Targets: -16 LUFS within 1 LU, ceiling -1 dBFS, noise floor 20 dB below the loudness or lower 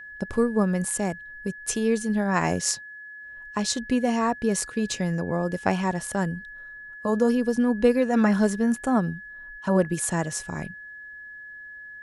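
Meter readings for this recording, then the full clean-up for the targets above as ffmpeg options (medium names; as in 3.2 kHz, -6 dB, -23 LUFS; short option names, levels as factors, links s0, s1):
steady tone 1.7 kHz; tone level -39 dBFS; loudness -25.0 LUFS; peak level -6.5 dBFS; loudness target -16.0 LUFS
-> -af "bandreject=f=1700:w=30"
-af "volume=2.82,alimiter=limit=0.891:level=0:latency=1"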